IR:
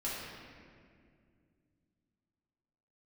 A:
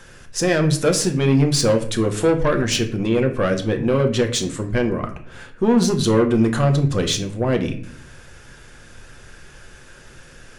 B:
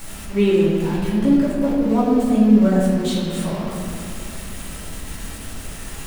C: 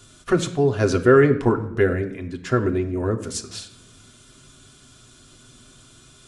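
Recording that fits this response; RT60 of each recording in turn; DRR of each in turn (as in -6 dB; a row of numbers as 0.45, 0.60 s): B; 0.55, 2.2, 0.80 s; 4.0, -8.5, 4.0 dB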